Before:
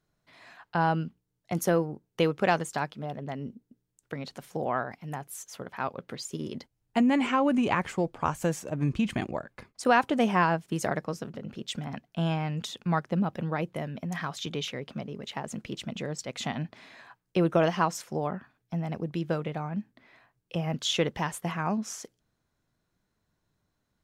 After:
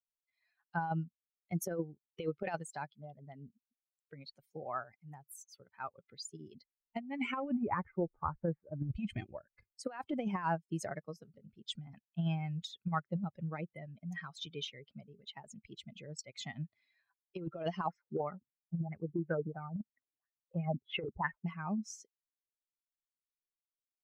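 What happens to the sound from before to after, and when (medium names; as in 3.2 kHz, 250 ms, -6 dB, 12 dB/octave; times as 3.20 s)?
7.57–8.89 s: low-pass 1.8 kHz 24 dB/octave
17.87–21.46 s: LFO low-pass sine 3 Hz 270–2100 Hz
whole clip: expander on every frequency bin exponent 2; treble shelf 4.4 kHz -8 dB; compressor with a negative ratio -31 dBFS, ratio -0.5; trim -2 dB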